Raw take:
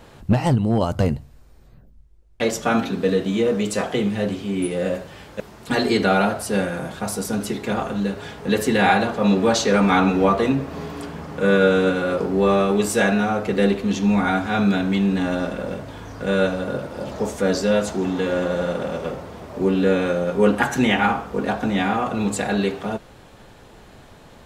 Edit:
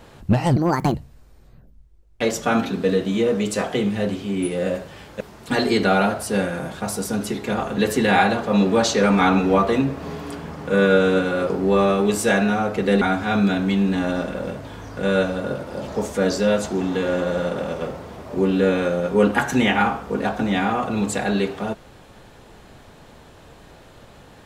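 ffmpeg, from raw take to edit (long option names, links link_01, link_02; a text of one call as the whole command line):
ffmpeg -i in.wav -filter_complex "[0:a]asplit=5[link_01][link_02][link_03][link_04][link_05];[link_01]atrim=end=0.564[link_06];[link_02]atrim=start=0.56:end=1.14,asetpts=PTS-STARTPTS,asetrate=66591,aresample=44100,atrim=end_sample=16939,asetpts=PTS-STARTPTS[link_07];[link_03]atrim=start=1.136:end=7.962[link_08];[link_04]atrim=start=8.468:end=13.722[link_09];[link_05]atrim=start=14.248[link_10];[link_06][link_07]acrossfade=duration=0.004:curve1=hsin:curve2=hsin[link_11];[link_11][link_08]acrossfade=duration=0.004:curve1=hsin:curve2=hsin[link_12];[link_12][link_09]acrossfade=duration=0.004:curve1=hsin:curve2=hsin[link_13];[link_13][link_10]acrossfade=duration=0.004:curve1=hsin:curve2=hsin" out.wav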